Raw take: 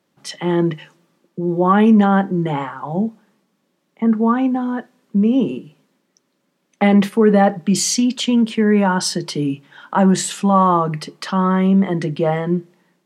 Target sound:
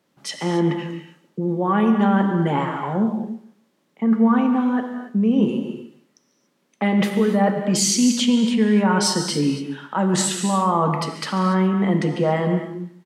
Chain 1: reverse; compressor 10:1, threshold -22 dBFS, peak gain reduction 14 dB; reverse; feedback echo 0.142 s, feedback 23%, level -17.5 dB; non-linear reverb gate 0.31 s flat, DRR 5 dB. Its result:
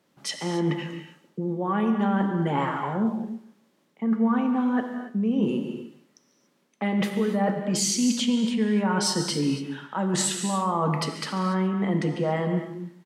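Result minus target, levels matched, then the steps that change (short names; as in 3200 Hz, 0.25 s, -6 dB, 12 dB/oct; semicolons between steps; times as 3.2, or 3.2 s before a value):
compressor: peak gain reduction +6.5 dB
change: compressor 10:1, threshold -15 dBFS, peak gain reduction 8 dB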